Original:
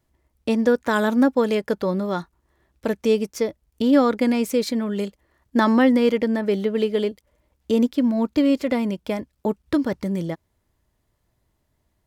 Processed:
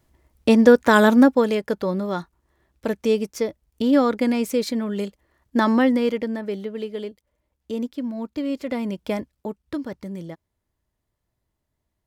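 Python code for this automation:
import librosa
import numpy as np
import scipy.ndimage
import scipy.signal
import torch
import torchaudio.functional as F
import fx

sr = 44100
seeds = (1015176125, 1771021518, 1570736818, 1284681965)

y = fx.gain(x, sr, db=fx.line((1.07, 6.0), (1.56, -1.0), (5.76, -1.0), (6.77, -8.5), (8.42, -8.5), (9.18, 1.0), (9.5, -8.0)))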